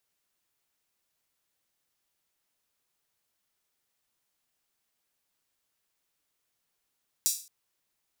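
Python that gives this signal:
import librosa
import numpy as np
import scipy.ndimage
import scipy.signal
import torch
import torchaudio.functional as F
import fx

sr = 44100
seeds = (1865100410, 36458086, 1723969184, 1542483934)

y = fx.drum_hat_open(sr, length_s=0.22, from_hz=5800.0, decay_s=0.38)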